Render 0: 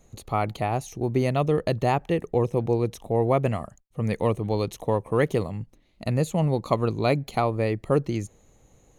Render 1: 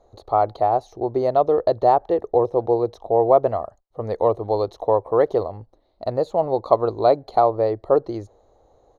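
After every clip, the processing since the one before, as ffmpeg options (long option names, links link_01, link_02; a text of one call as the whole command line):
ffmpeg -i in.wav -af "firequalizer=gain_entry='entry(100,0);entry(150,-11);entry(360,7);entry(670,14);entry(2500,-14);entry(4000,3);entry(7600,-17)':delay=0.05:min_phase=1,volume=-3.5dB" out.wav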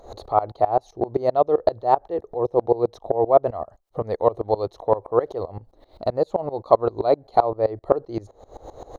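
ffmpeg -i in.wav -af "acompressor=mode=upward:threshold=-19dB:ratio=2.5,aeval=exprs='val(0)*pow(10,-21*if(lt(mod(-7.7*n/s,1),2*abs(-7.7)/1000),1-mod(-7.7*n/s,1)/(2*abs(-7.7)/1000),(mod(-7.7*n/s,1)-2*abs(-7.7)/1000)/(1-2*abs(-7.7)/1000))/20)':channel_layout=same,volume=4dB" out.wav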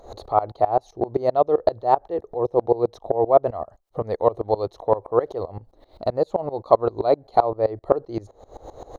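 ffmpeg -i in.wav -af anull out.wav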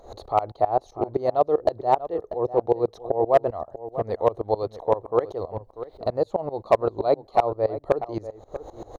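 ffmpeg -i in.wav -filter_complex "[0:a]asoftclip=type=hard:threshold=-6dB,asplit=2[link_01][link_02];[link_02]adelay=641.4,volume=-13dB,highshelf=frequency=4000:gain=-14.4[link_03];[link_01][link_03]amix=inputs=2:normalize=0,volume=-2dB" out.wav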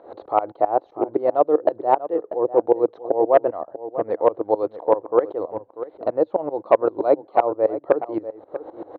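ffmpeg -i in.wav -af "highpass=210,equalizer=frequency=310:width_type=q:width=4:gain=9,equalizer=frequency=520:width_type=q:width=4:gain=5,equalizer=frequency=930:width_type=q:width=4:gain=3,equalizer=frequency=1500:width_type=q:width=4:gain=6,lowpass=frequency=2900:width=0.5412,lowpass=frequency=2900:width=1.3066" out.wav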